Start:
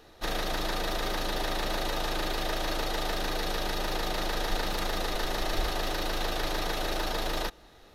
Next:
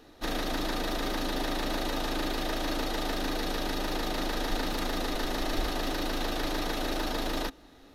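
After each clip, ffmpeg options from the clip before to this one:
ffmpeg -i in.wav -af "equalizer=frequency=270:width=4:gain=13.5,volume=-1.5dB" out.wav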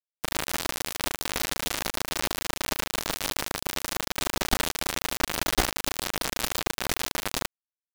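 ffmpeg -i in.wav -af "acrusher=bits=3:mix=0:aa=0.000001,volume=4.5dB" out.wav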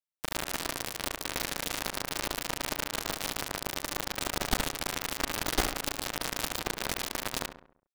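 ffmpeg -i in.wav -filter_complex "[0:a]asplit=2[link_01][link_02];[link_02]adelay=68,lowpass=frequency=2000:poles=1,volume=-8.5dB,asplit=2[link_03][link_04];[link_04]adelay=68,lowpass=frequency=2000:poles=1,volume=0.5,asplit=2[link_05][link_06];[link_06]adelay=68,lowpass=frequency=2000:poles=1,volume=0.5,asplit=2[link_07][link_08];[link_08]adelay=68,lowpass=frequency=2000:poles=1,volume=0.5,asplit=2[link_09][link_10];[link_10]adelay=68,lowpass=frequency=2000:poles=1,volume=0.5,asplit=2[link_11][link_12];[link_12]adelay=68,lowpass=frequency=2000:poles=1,volume=0.5[link_13];[link_01][link_03][link_05][link_07][link_09][link_11][link_13]amix=inputs=7:normalize=0,volume=-4dB" out.wav

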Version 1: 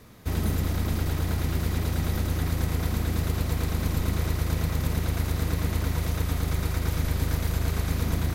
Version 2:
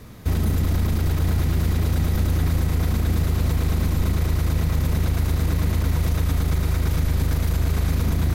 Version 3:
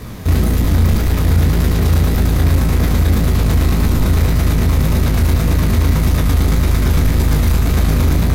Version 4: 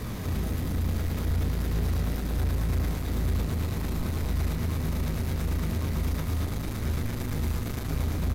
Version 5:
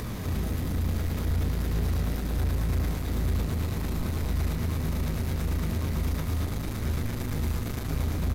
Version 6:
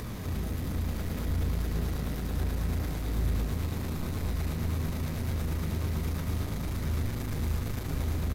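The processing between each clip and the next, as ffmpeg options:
ffmpeg -i in.wav -af "lowshelf=frequency=200:gain=6.5,alimiter=limit=-18.5dB:level=0:latency=1:release=36,volume=5dB" out.wav
ffmpeg -i in.wav -af "acontrast=50,asoftclip=type=tanh:threshold=-14.5dB,flanger=delay=16:depth=6.4:speed=1.8,volume=9dB" out.wav
ffmpeg -i in.wav -af "alimiter=limit=-17.5dB:level=0:latency=1:release=341,asoftclip=type=tanh:threshold=-21.5dB,aecho=1:1:236:0.708,volume=-3dB" out.wav
ffmpeg -i in.wav -af "acompressor=mode=upward:threshold=-37dB:ratio=2.5" out.wav
ffmpeg -i in.wav -af "aecho=1:1:643:0.501,volume=-3.5dB" out.wav

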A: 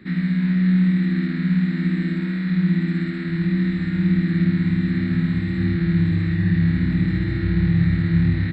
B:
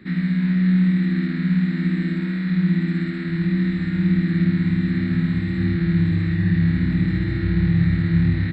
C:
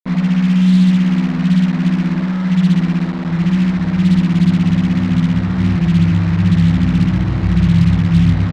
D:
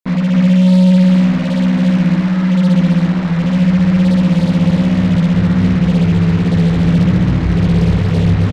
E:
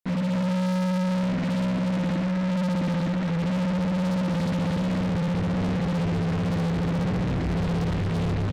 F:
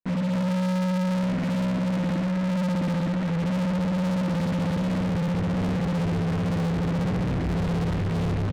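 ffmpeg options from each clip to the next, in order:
ffmpeg -i in.wav -af anull out.wav
ffmpeg -i in.wav -af "firequalizer=gain_entry='entry(290,0);entry(440,-27);entry(2100,-10)':delay=0.05:min_phase=1,acrusher=bits=4:mix=0:aa=0.5,volume=6.5dB" out.wav
ffmpeg -i in.wav -filter_complex "[0:a]asoftclip=type=tanh:threshold=-13.5dB,asplit=2[link_01][link_02];[link_02]aecho=0:1:272:0.562[link_03];[link_01][link_03]amix=inputs=2:normalize=0,volume=4dB" out.wav
ffmpeg -i in.wav -af "asoftclip=type=tanh:threshold=-20.5dB,volume=-3dB" out.wav
ffmpeg -i in.wav -af "adynamicsmooth=sensitivity=6:basefreq=1900" out.wav

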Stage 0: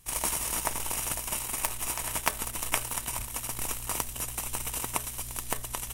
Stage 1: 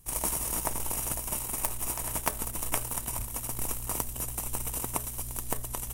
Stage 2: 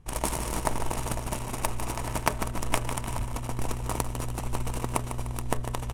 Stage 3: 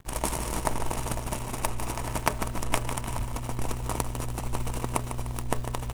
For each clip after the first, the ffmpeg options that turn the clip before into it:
ffmpeg -i in.wav -af "equalizer=frequency=2800:width=0.38:gain=-10,volume=3dB" out.wav
ffmpeg -i in.wav -af "adynamicsmooth=sensitivity=6:basefreq=2400,aecho=1:1:150|300|450|600|750:0.335|0.147|0.0648|0.0285|0.0126,volume=6dB" out.wav
ffmpeg -i in.wav -af "acrusher=bits=9:dc=4:mix=0:aa=0.000001" out.wav

